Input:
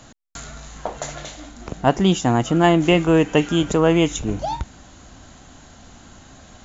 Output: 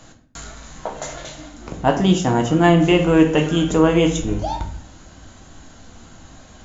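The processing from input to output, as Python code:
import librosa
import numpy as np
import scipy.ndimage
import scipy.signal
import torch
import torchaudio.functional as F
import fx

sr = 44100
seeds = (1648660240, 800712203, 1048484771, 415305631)

y = fx.room_shoebox(x, sr, seeds[0], volume_m3=79.0, walls='mixed', distance_m=0.59)
y = F.gain(torch.from_numpy(y), -1.5).numpy()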